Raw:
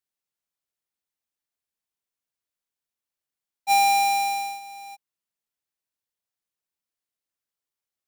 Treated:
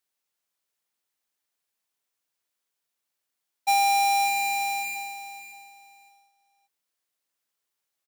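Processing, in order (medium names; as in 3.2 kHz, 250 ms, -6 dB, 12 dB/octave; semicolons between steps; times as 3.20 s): on a send: feedback delay 571 ms, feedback 24%, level -11 dB; on the sum: compression 6:1, threshold -28 dBFS, peak gain reduction 9 dB; bass shelf 190 Hz -10.5 dB; trim +6.5 dB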